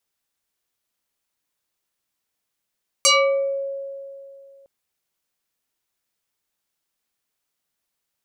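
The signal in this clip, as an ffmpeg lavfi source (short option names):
-f lavfi -i "aevalsrc='0.282*pow(10,-3*t/2.61)*sin(2*PI*550*t+5.3*pow(10,-3*t/0.58)*sin(2*PI*3.13*550*t))':d=1.61:s=44100"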